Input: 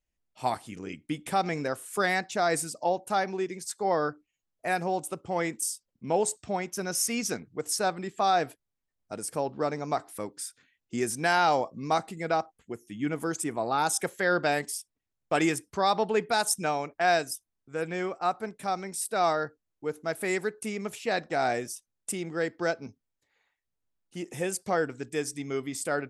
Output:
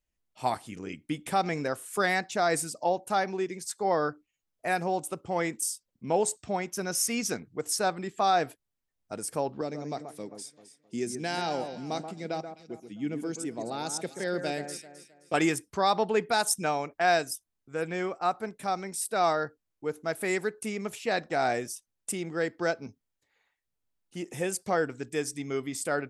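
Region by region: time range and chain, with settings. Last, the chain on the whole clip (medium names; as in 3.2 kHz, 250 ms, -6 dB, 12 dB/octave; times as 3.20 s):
9.61–15.34 s: band-pass 150–7000 Hz + peaking EQ 1.2 kHz -13.5 dB 1.8 oct + echo whose repeats swap between lows and highs 131 ms, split 1.9 kHz, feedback 56%, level -8 dB
whole clip: none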